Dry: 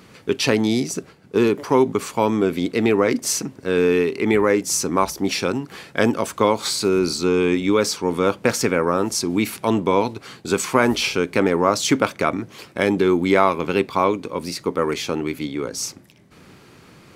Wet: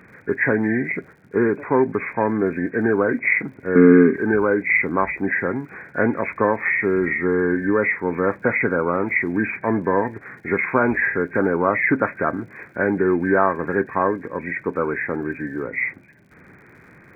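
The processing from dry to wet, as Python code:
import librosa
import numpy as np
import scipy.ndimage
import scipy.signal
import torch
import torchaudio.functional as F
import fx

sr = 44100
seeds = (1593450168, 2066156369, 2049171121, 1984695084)

y = fx.freq_compress(x, sr, knee_hz=1400.0, ratio=4.0)
y = fx.dmg_crackle(y, sr, seeds[0], per_s=100.0, level_db=-46.0)
y = fx.small_body(y, sr, hz=(230.0, 1200.0, 2100.0), ring_ms=30, db=16, at=(3.75, 4.16))
y = y * 10.0 ** (-1.5 / 20.0)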